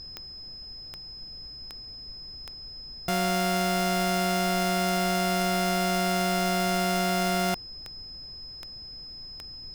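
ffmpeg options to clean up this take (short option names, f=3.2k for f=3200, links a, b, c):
-af "adeclick=t=4,bandreject=f=5.1k:w=30,afftdn=nr=30:nf=-42"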